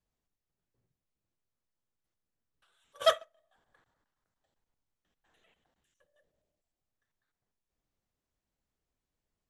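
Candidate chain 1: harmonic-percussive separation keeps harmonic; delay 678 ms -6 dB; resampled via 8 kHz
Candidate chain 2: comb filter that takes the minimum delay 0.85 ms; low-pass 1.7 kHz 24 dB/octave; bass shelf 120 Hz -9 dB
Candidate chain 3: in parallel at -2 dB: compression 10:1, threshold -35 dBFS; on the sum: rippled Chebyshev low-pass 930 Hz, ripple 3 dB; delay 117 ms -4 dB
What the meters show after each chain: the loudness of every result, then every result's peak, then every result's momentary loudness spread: -35.0 LUFS, -40.0 LUFS, -30.5 LUFS; -16.5 dBFS, -23.0 dBFS, -15.0 dBFS; 15 LU, 3 LU, 7 LU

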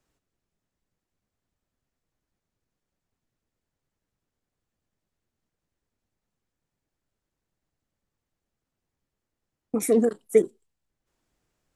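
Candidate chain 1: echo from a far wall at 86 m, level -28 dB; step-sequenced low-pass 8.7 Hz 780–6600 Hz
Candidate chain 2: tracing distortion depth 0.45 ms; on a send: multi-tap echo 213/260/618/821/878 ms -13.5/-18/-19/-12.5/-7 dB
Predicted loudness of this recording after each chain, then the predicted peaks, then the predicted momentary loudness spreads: -22.5 LUFS, -25.0 LUFS; -5.5 dBFS, -7.0 dBFS; 11 LU, 8 LU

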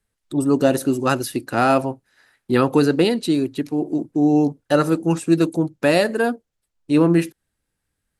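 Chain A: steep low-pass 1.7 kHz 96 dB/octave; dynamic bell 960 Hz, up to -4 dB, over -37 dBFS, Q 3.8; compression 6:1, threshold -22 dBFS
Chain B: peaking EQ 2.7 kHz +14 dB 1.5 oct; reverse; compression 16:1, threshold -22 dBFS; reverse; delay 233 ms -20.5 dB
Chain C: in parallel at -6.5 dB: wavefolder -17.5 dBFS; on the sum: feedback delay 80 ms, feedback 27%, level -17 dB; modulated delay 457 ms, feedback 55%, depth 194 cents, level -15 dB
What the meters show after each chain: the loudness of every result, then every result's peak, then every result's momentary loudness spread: -27.5 LUFS, -27.5 LUFS, -18.0 LUFS; -11.0 dBFS, -9.0 dBFS, -2.5 dBFS; 5 LU, 6 LU, 15 LU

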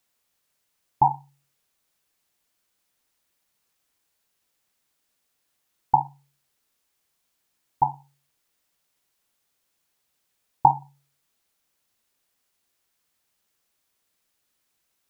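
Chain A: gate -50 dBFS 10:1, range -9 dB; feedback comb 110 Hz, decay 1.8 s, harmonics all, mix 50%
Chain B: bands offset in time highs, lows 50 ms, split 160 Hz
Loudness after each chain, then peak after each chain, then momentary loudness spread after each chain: -30.5 LUFS, -24.5 LUFS; -7.0 dBFS, -1.5 dBFS; 15 LU, 12 LU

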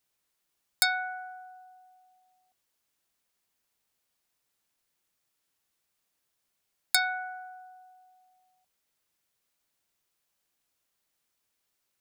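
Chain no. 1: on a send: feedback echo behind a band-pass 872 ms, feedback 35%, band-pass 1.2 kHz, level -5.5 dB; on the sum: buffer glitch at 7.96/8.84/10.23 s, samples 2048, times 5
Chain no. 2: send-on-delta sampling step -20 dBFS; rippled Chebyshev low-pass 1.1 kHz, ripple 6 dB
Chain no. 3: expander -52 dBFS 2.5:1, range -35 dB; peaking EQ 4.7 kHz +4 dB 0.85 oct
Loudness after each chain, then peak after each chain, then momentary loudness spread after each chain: -32.5 LUFS, -38.5 LUFS, -27.0 LUFS; -6.0 dBFS, -24.0 dBFS, -4.5 dBFS; 22 LU, 3 LU, 18 LU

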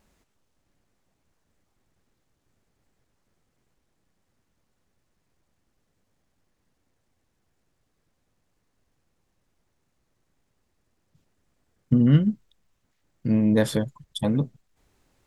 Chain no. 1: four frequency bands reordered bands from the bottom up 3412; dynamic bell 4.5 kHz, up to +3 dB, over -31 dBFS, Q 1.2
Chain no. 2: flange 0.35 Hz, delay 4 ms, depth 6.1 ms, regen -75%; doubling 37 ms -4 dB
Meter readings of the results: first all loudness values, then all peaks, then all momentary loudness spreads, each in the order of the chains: -17.5 LUFS, -25.5 LUFS; -4.5 dBFS, -9.5 dBFS; 15 LU, 12 LU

